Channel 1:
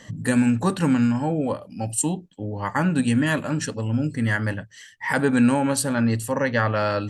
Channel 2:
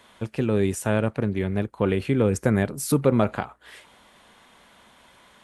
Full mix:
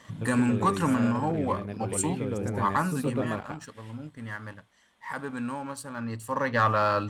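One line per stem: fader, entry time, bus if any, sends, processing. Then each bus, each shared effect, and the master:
0:02.72 −9.5 dB → 0:03.17 −20 dB → 0:05.91 −20 dB → 0:06.60 −8 dB, 0.00 s, no send, no echo send, parametric band 1,100 Hz +12 dB 0.63 octaves
−6.5 dB, 0.00 s, no send, echo send −9 dB, de-essing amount 50%; automatic ducking −11 dB, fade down 0.65 s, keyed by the first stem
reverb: not used
echo: single-tap delay 116 ms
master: leveller curve on the samples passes 1

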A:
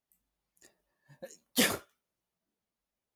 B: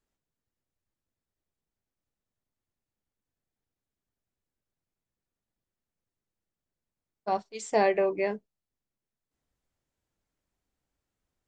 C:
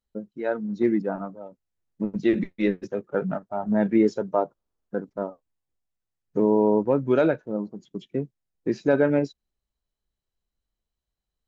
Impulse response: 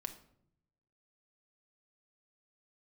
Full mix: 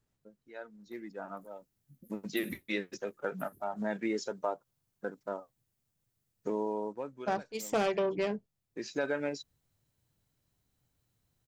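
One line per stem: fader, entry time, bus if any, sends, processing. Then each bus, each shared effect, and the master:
+0.5 dB, 0.80 s, no send, echo send −13.5 dB, inverse Chebyshev band-stop filter 840–4,600 Hz, stop band 60 dB; downward compressor, threshold −39 dBFS, peak gain reduction 12.5 dB
+1.5 dB, 0.00 s, no send, no echo send, phase distortion by the signal itself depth 0.21 ms; parametric band 120 Hz +14 dB 1.1 octaves
0:01.02 −16 dB → 0:01.43 −3 dB, 0.10 s, no send, no echo send, spectral tilt +4 dB per octave; automatic ducking −15 dB, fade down 0.65 s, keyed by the second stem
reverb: not used
echo: single-tap delay 1,029 ms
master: downward compressor 2 to 1, threshold −32 dBFS, peak gain reduction 8 dB

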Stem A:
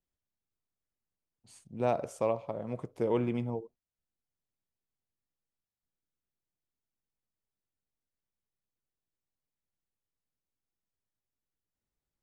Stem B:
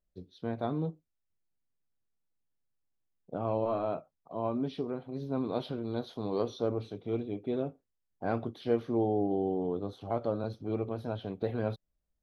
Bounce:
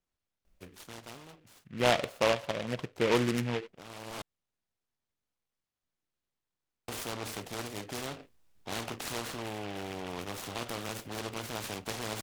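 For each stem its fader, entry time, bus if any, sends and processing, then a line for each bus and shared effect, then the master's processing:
+1.5 dB, 0.00 s, no send, low-pass filter 4,300 Hz 12 dB per octave; parametric band 2,400 Hz +7.5 dB 2.2 octaves
−4.0 dB, 0.45 s, muted 0:04.22–0:06.88, no send, high-shelf EQ 8,600 Hz −5.5 dB; every bin compressed towards the loudest bin 4 to 1; automatic ducking −14 dB, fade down 1.60 s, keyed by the first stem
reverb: not used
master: short delay modulated by noise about 1,900 Hz, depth 0.13 ms

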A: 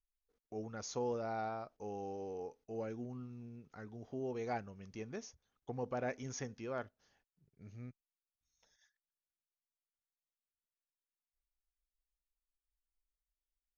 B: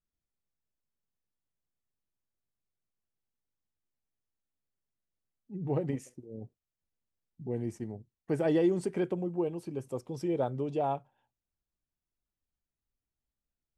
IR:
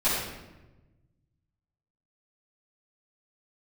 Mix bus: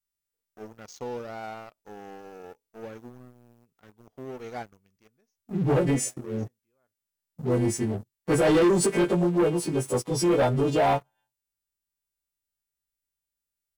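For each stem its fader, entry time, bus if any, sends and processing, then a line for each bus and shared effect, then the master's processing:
−8.5 dB, 0.05 s, no send, automatic ducking −19 dB, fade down 0.70 s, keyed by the second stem
+2.0 dB, 0.00 s, no send, every partial snapped to a pitch grid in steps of 2 semitones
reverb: not used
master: leveller curve on the samples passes 3

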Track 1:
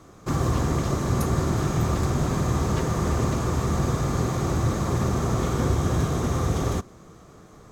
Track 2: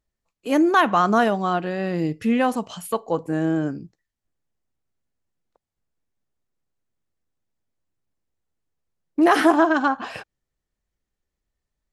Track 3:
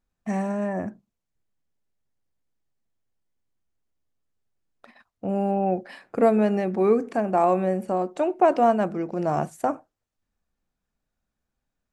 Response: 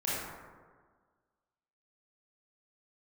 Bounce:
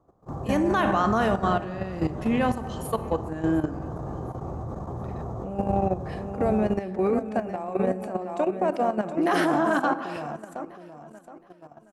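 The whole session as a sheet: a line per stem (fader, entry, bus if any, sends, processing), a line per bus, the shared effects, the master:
−7.5 dB, 0.00 s, no send, echo send −14 dB, drawn EQ curve 330 Hz 0 dB, 800 Hz +7 dB, 2,200 Hz −18 dB
−2.5 dB, 0.00 s, send −14 dB, echo send −21 dB, no processing
0.0 dB, 0.20 s, send −18 dB, echo send −5 dB, brickwall limiter −15.5 dBFS, peak gain reduction 9 dB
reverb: on, RT60 1.6 s, pre-delay 22 ms
echo: repeating echo 719 ms, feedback 41%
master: output level in coarse steps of 11 dB

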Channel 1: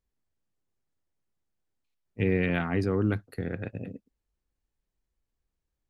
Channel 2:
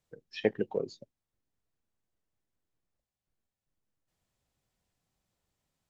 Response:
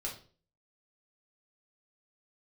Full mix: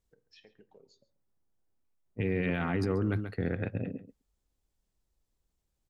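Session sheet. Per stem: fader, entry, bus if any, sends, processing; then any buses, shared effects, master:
+2.5 dB, 0.00 s, no send, echo send −14 dB, low-pass that shuts in the quiet parts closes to 1,200 Hz, open at −24 dBFS
−14.0 dB, 0.00 s, send −11.5 dB, echo send −18 dB, high-shelf EQ 2,400 Hz +11 dB; brickwall limiter −20.5 dBFS, peak gain reduction 8.5 dB; downward compressor 2.5 to 1, threshold −49 dBFS, peak gain reduction 14.5 dB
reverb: on, RT60 0.40 s, pre-delay 5 ms
echo: single-tap delay 136 ms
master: brickwall limiter −20.5 dBFS, peak gain reduction 10 dB

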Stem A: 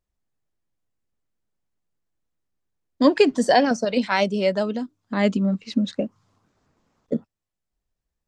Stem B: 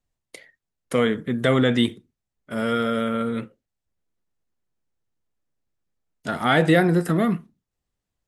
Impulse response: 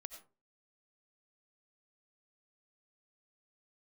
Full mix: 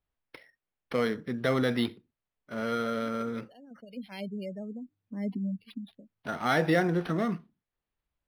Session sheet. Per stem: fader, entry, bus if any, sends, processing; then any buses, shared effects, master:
−5.0 dB, 0.00 s, no send, gate on every frequency bin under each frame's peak −20 dB strong; drawn EQ curve 100 Hz 0 dB, 620 Hz −15 dB, 1,300 Hz −26 dB, 2,900 Hz −4 dB; automatic ducking −22 dB, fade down 0.65 s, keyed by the second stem
−5.5 dB, 0.00 s, no send, low-shelf EQ 350 Hz −4.5 dB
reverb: not used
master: high-shelf EQ 8,200 Hz +6 dB; linearly interpolated sample-rate reduction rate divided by 6×

